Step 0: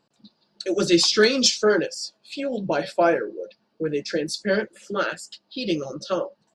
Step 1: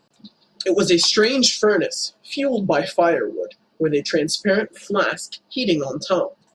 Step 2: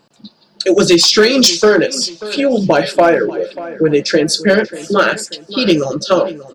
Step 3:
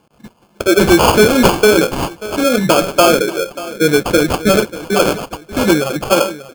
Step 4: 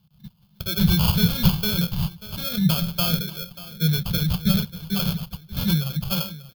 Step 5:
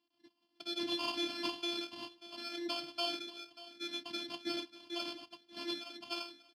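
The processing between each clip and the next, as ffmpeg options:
ffmpeg -i in.wav -af "acompressor=threshold=-20dB:ratio=4,volume=7dB" out.wav
ffmpeg -i in.wav -filter_complex "[0:a]asoftclip=type=hard:threshold=-9.5dB,asplit=2[link_01][link_02];[link_02]adelay=587,lowpass=frequency=3100:poles=1,volume=-16dB,asplit=2[link_03][link_04];[link_04]adelay=587,lowpass=frequency=3100:poles=1,volume=0.41,asplit=2[link_05][link_06];[link_06]adelay=587,lowpass=frequency=3100:poles=1,volume=0.41,asplit=2[link_07][link_08];[link_08]adelay=587,lowpass=frequency=3100:poles=1,volume=0.41[link_09];[link_01][link_03][link_05][link_07][link_09]amix=inputs=5:normalize=0,volume=7dB" out.wav
ffmpeg -i in.wav -af "acrusher=samples=23:mix=1:aa=0.000001" out.wav
ffmpeg -i in.wav -af "firequalizer=gain_entry='entry(110,0);entry(170,6);entry(270,-28);entry(910,-19);entry(2400,-16);entry(3600,-1);entry(7600,-19);entry(13000,1)':delay=0.05:min_phase=1,volume=-1dB" out.wav
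ffmpeg -i in.wav -af "afftfilt=real='hypot(re,im)*cos(PI*b)':imag='0':win_size=512:overlap=0.75,highpass=frequency=220:width=0.5412,highpass=frequency=220:width=1.3066,equalizer=frequency=460:width_type=q:width=4:gain=-6,equalizer=frequency=1400:width_type=q:width=4:gain=-7,equalizer=frequency=3800:width_type=q:width=4:gain=-6,equalizer=frequency=6600:width_type=q:width=4:gain=-10,lowpass=frequency=7000:width=0.5412,lowpass=frequency=7000:width=1.3066,volume=-3.5dB" out.wav

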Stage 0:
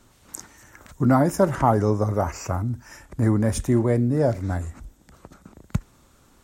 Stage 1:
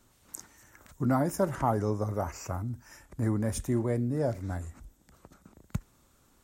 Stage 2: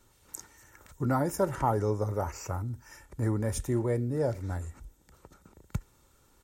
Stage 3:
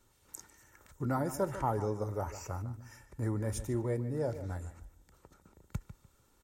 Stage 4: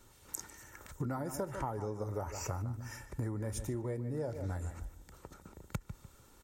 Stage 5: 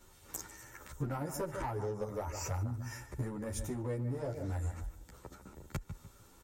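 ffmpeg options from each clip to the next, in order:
ffmpeg -i in.wav -af "highshelf=frequency=9900:gain=7.5,volume=-8.5dB" out.wav
ffmpeg -i in.wav -af "aecho=1:1:2.2:0.36" out.wav
ffmpeg -i in.wav -filter_complex "[0:a]asplit=2[link_01][link_02];[link_02]adelay=148,lowpass=frequency=3700:poles=1,volume=-12.5dB,asplit=2[link_03][link_04];[link_04]adelay=148,lowpass=frequency=3700:poles=1,volume=0.25,asplit=2[link_05][link_06];[link_06]adelay=148,lowpass=frequency=3700:poles=1,volume=0.25[link_07];[link_01][link_03][link_05][link_07]amix=inputs=4:normalize=0,volume=-5dB" out.wav
ffmpeg -i in.wav -af "acompressor=threshold=-41dB:ratio=12,volume=7.5dB" out.wav
ffmpeg -i in.wav -filter_complex "[0:a]aeval=exprs='clip(val(0),-1,0.0251)':channel_layout=same,asplit=2[link_01][link_02];[link_02]adelay=10.9,afreqshift=0.88[link_03];[link_01][link_03]amix=inputs=2:normalize=1,volume=4dB" out.wav

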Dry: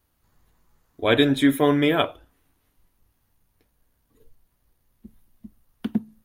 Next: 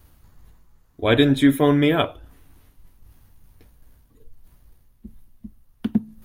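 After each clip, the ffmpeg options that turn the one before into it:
ffmpeg -i in.wav -af "lowshelf=frequency=170:gain=9.5,areverse,acompressor=mode=upward:threshold=-39dB:ratio=2.5,areverse" out.wav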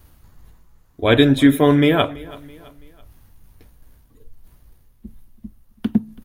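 ffmpeg -i in.wav -af "aecho=1:1:331|662|993:0.0891|0.0383|0.0165,volume=3dB" out.wav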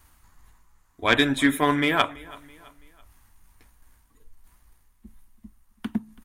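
ffmpeg -i in.wav -af "equalizer=frequency=125:width_type=o:width=1:gain=-7,equalizer=frequency=500:width_type=o:width=1:gain=-6,equalizer=frequency=1000:width_type=o:width=1:gain=8,equalizer=frequency=2000:width_type=o:width=1:gain=6,equalizer=frequency=8000:width_type=o:width=1:gain=10,aeval=exprs='1.26*(cos(1*acos(clip(val(0)/1.26,-1,1)))-cos(1*PI/2))+0.158*(cos(3*acos(clip(val(0)/1.26,-1,1)))-cos(3*PI/2))':channel_layout=same,volume=-3.5dB" out.wav

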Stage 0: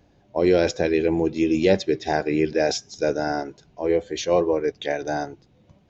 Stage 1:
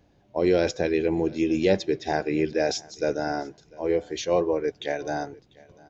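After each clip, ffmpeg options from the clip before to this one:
ffmpeg -i in.wav -af "aecho=1:1:696|1392:0.0631|0.0114,volume=-3dB" out.wav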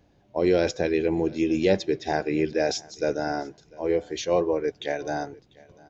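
ffmpeg -i in.wav -af anull out.wav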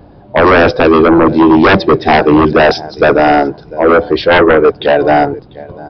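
ffmpeg -i in.wav -af "highshelf=frequency=1600:width_type=q:width=1.5:gain=-8,aresample=11025,aeval=exprs='0.335*sin(PI/2*3.98*val(0)/0.335)':channel_layout=same,aresample=44100,volume=7dB" out.wav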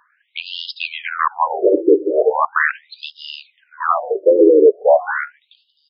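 ffmpeg -i in.wav -af "aresample=11025,aresample=44100,afftfilt=real='re*between(b*sr/1024,380*pow(4000/380,0.5+0.5*sin(2*PI*0.39*pts/sr))/1.41,380*pow(4000/380,0.5+0.5*sin(2*PI*0.39*pts/sr))*1.41)':imag='im*between(b*sr/1024,380*pow(4000/380,0.5+0.5*sin(2*PI*0.39*pts/sr))/1.41,380*pow(4000/380,0.5+0.5*sin(2*PI*0.39*pts/sr))*1.41)':win_size=1024:overlap=0.75,volume=-1dB" out.wav

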